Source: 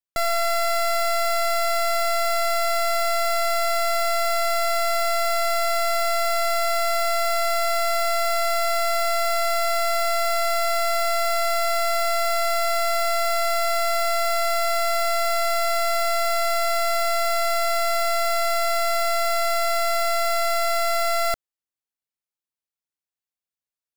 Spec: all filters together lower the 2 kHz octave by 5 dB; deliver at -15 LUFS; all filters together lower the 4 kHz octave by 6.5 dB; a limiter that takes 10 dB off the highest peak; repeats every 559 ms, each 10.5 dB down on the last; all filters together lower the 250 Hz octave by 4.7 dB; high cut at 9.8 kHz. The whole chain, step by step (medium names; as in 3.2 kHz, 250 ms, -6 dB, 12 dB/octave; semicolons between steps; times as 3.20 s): low-pass 9.8 kHz; peaking EQ 250 Hz -9 dB; peaking EQ 2 kHz -3.5 dB; peaking EQ 4 kHz -7 dB; peak limiter -30 dBFS; feedback delay 559 ms, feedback 30%, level -10.5 dB; trim +19.5 dB